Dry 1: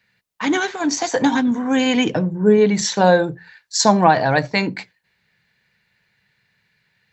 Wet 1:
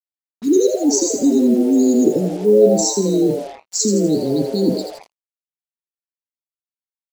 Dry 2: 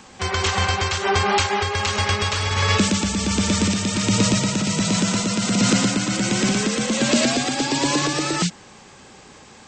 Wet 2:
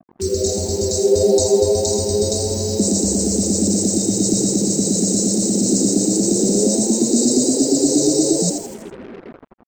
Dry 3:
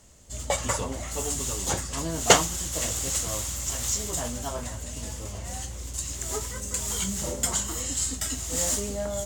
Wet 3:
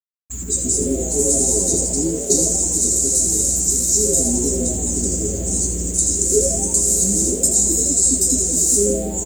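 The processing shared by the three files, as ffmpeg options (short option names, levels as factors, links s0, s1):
-filter_complex "[0:a]afftfilt=real='re*(1-between(b*sr/4096,440,3700))':imag='im*(1-between(b*sr/4096,440,3700))':win_size=4096:overlap=0.75,dynaudnorm=f=290:g=7:m=2.82,afftfilt=real='re*gte(hypot(re,im),0.0178)':imag='im*gte(hypot(re,im),0.0178)':win_size=1024:overlap=0.75,afftdn=nr=35:nf=-40,areverse,acompressor=threshold=0.0562:ratio=6,areverse,equalizer=f=125:t=o:w=1:g=-8,equalizer=f=250:t=o:w=1:g=5,equalizer=f=500:t=o:w=1:g=12,equalizer=f=1000:t=o:w=1:g=-4,equalizer=f=2000:t=o:w=1:g=11,equalizer=f=4000:t=o:w=1:g=-9,equalizer=f=8000:t=o:w=1:g=9,asplit=6[s0][s1][s2][s3][s4][s5];[s1]adelay=82,afreqshift=120,volume=0.447[s6];[s2]adelay=164,afreqshift=240,volume=0.197[s7];[s3]adelay=246,afreqshift=360,volume=0.0861[s8];[s4]adelay=328,afreqshift=480,volume=0.038[s9];[s5]adelay=410,afreqshift=600,volume=0.0168[s10];[s0][s6][s7][s8][s9][s10]amix=inputs=6:normalize=0,acrusher=bits=6:mix=0:aa=0.5,volume=1.88"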